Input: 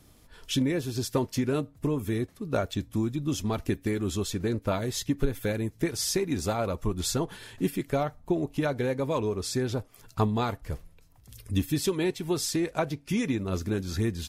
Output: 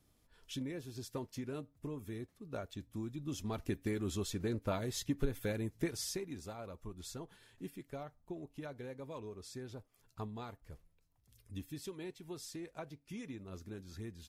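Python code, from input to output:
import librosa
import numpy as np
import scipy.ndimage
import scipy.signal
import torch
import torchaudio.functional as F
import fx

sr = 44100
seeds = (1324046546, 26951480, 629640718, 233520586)

y = fx.gain(x, sr, db=fx.line((2.81, -15.0), (3.86, -8.0), (5.87, -8.0), (6.44, -18.0)))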